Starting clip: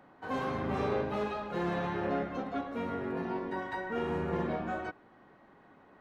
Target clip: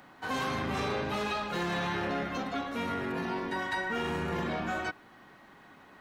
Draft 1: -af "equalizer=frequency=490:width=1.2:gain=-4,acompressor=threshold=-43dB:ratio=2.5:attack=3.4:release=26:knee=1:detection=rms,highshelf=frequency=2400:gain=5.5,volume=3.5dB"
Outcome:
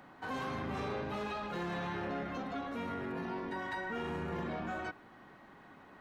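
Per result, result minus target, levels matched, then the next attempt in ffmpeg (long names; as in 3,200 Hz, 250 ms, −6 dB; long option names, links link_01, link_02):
downward compressor: peak gain reduction +5 dB; 4,000 Hz band −4.0 dB
-af "equalizer=frequency=490:width=1.2:gain=-4,acompressor=threshold=-35dB:ratio=2.5:attack=3.4:release=26:knee=1:detection=rms,highshelf=frequency=2400:gain=5.5,volume=3.5dB"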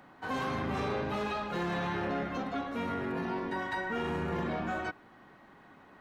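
4,000 Hz band −4.5 dB
-af "equalizer=frequency=490:width=1.2:gain=-4,acompressor=threshold=-35dB:ratio=2.5:attack=3.4:release=26:knee=1:detection=rms,highshelf=frequency=2400:gain=14,volume=3.5dB"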